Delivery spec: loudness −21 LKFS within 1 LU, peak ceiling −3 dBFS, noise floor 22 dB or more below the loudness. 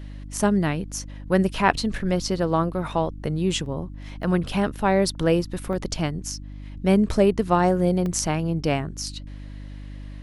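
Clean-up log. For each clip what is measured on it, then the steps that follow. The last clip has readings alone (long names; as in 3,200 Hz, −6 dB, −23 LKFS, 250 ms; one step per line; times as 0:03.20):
number of dropouts 4; longest dropout 1.7 ms; mains hum 50 Hz; hum harmonics up to 300 Hz; level of the hum −33 dBFS; integrated loudness −24.0 LKFS; sample peak −3.0 dBFS; target loudness −21.0 LKFS
→ repair the gap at 0:03.66/0:04.23/0:05.73/0:08.06, 1.7 ms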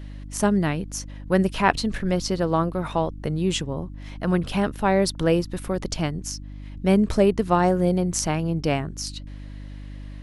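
number of dropouts 0; mains hum 50 Hz; hum harmonics up to 300 Hz; level of the hum −33 dBFS
→ hum removal 50 Hz, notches 6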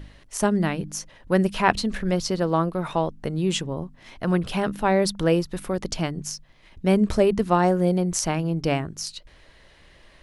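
mains hum none found; integrated loudness −24.0 LKFS; sample peak −3.0 dBFS; target loudness −21.0 LKFS
→ level +3 dB
brickwall limiter −3 dBFS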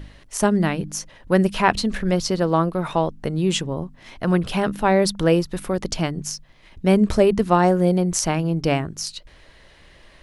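integrated loudness −21.0 LKFS; sample peak −3.0 dBFS; background noise floor −50 dBFS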